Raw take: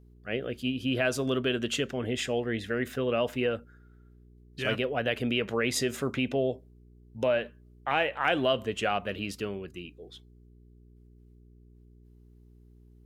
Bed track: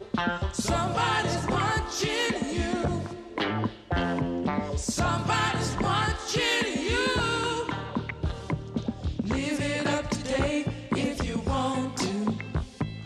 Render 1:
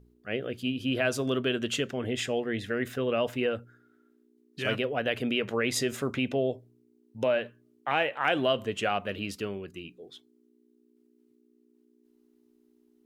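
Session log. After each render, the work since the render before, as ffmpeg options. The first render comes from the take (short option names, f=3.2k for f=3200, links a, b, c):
-af "bandreject=f=60:t=h:w=4,bandreject=f=120:t=h:w=4,bandreject=f=180:t=h:w=4"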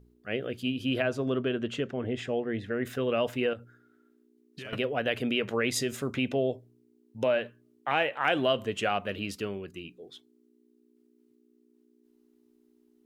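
-filter_complex "[0:a]asettb=1/sr,asplit=3[a][b][c];[a]atrim=end=1.024[d];[b]atrim=start=1.02:end=2.85,asetpts=PTS-STARTPTS,afade=t=in:d=0.004:c=qsin,afade=t=out:st=1.826:d=0.004:c=qsin,lowpass=f=1.4k:p=1[e];[c]atrim=start=2.846[f];[d][e]acrossfade=d=0.004:c1=hsin:c2=qsin[g];[g][f]acrossfade=d=0.004:c1=qsin:c2=hsin,asettb=1/sr,asplit=3[h][i][j];[h]atrim=end=3.534[k];[i]atrim=start=3.53:end=4.73,asetpts=PTS-STARTPTS,afade=t=in:d=0.004:c=qsin,afade=t=out:st=1.196:d=0.004:c=qsin,acompressor=threshold=-38dB:ratio=6:attack=3.2:release=140:knee=1:detection=peak[l];[j]atrim=start=4.726[m];[k][l]acrossfade=d=0.004:c1=hsin:c2=qsin[n];[n][m]acrossfade=d=0.004:c1=qsin:c2=hsin,asettb=1/sr,asplit=3[o][p][q];[o]atrim=end=5.704[r];[p]atrim=start=5.7:end=6.15,asetpts=PTS-STARTPTS,afade=t=in:d=0.004:c=qsin,afade=t=out:st=0.446:d=0.004:c=qsin,equalizer=f=1k:t=o:w=2.8:g=-4[s];[q]atrim=start=6.146[t];[r][s]acrossfade=d=0.004:c1=hsin:c2=qsin[u];[u][t]acrossfade=d=0.004:c1=qsin:c2=hsin"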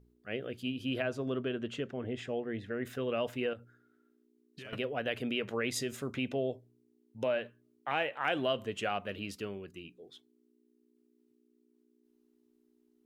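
-af "volume=-5.5dB"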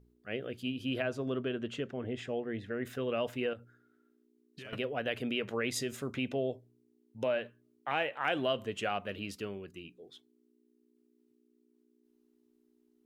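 -af anull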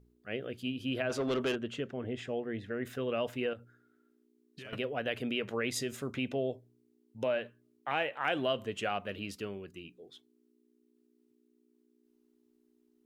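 -filter_complex "[0:a]asplit=3[a][b][c];[a]afade=t=out:st=1.09:d=0.02[d];[b]asplit=2[e][f];[f]highpass=f=720:p=1,volume=19dB,asoftclip=type=tanh:threshold=-23.5dB[g];[e][g]amix=inputs=2:normalize=0,lowpass=f=7.8k:p=1,volume=-6dB,afade=t=in:st=1.09:d=0.02,afade=t=out:st=1.54:d=0.02[h];[c]afade=t=in:st=1.54:d=0.02[i];[d][h][i]amix=inputs=3:normalize=0"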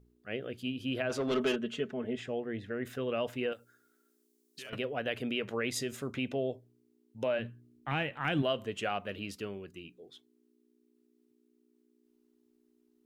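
-filter_complex "[0:a]asettb=1/sr,asplit=3[a][b][c];[a]atrim=end=1.314[d];[b]atrim=start=1.31:end=2.19,asetpts=PTS-STARTPTS,afade=t=in:d=0.004:c=qsin,afade=t=out:st=0.876:d=0.004:c=qsin,aecho=1:1:4.7:0.65,atrim=end_sample=38808[e];[c]atrim=start=2.186[f];[d][e]acrossfade=d=0.004:c1=hsin:c2=qsin[g];[g][f]acrossfade=d=0.004:c1=qsin:c2=hsin,asettb=1/sr,asplit=3[h][i][j];[h]atrim=end=3.524[k];[i]atrim=start=3.52:end=4.7,asetpts=PTS-STARTPTS,afade=t=in:d=0.004:c=qsin,afade=t=out:st=1.176:d=0.004:c=qsin,bass=f=250:g=-12,treble=f=4k:g=14[l];[j]atrim=start=4.696[m];[k][l]acrossfade=d=0.004:c1=hsin:c2=qsin[n];[n][m]acrossfade=d=0.004:c1=qsin:c2=hsin,asplit=3[o][p][q];[o]afade=t=out:st=7.38:d=0.02[r];[p]asubboost=boost=9:cutoff=180,afade=t=in:st=7.38:d=0.02,afade=t=out:st=8.41:d=0.02[s];[q]afade=t=in:st=8.41:d=0.02[t];[r][s][t]amix=inputs=3:normalize=0"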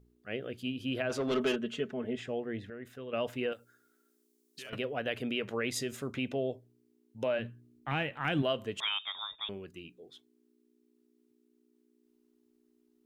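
-filter_complex "[0:a]asettb=1/sr,asplit=3[a][b][c];[a]atrim=end=8.804[d];[b]atrim=start=8.8:end=9.49,asetpts=PTS-STARTPTS,afade=t=in:d=0.004:c=qsin,afade=t=out:st=0.686:d=0.004:c=qsin,lowpass=f=3.2k:t=q:w=0.5098,lowpass=f=3.2k:t=q:w=0.6013,lowpass=f=3.2k:t=q:w=0.9,lowpass=f=3.2k:t=q:w=2.563,afreqshift=-3800[e];[c]atrim=start=9.486[f];[d][e]acrossfade=d=0.004:c1=hsin:c2=qsin[g];[g][f]acrossfade=d=0.004:c1=qsin:c2=hsin,asplit=3[h][i][j];[h]atrim=end=2.702[k];[i]atrim=start=2.698:end=3.132,asetpts=PTS-STARTPTS,volume=-8.5dB[l];[j]atrim=start=3.128[m];[k][l]acrossfade=d=0.004:c1=hsin:c2=hsin[n];[n][m]acrossfade=d=0.004:c1=hsin:c2=hsin"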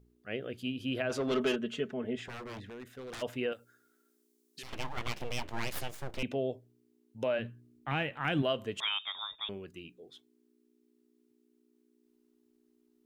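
-filter_complex "[0:a]asplit=3[a][b][c];[a]afade=t=out:st=2.24:d=0.02[d];[b]aeval=exprs='0.0126*(abs(mod(val(0)/0.0126+3,4)-2)-1)':c=same,afade=t=in:st=2.24:d=0.02,afade=t=out:st=3.21:d=0.02[e];[c]afade=t=in:st=3.21:d=0.02[f];[d][e][f]amix=inputs=3:normalize=0,asettb=1/sr,asplit=3[g][h][i];[g]atrim=end=4.634[j];[h]atrim=start=4.63:end=6.23,asetpts=PTS-STARTPTS,afade=t=in:d=0.004:c=qsin,afade=t=out:st=1.596:d=0.004:c=qsin,aeval=exprs='abs(val(0))':c=same[k];[i]atrim=start=6.226[l];[j][k]acrossfade=d=0.004:c1=hsin:c2=qsin[m];[m][l]acrossfade=d=0.004:c1=qsin:c2=hsin"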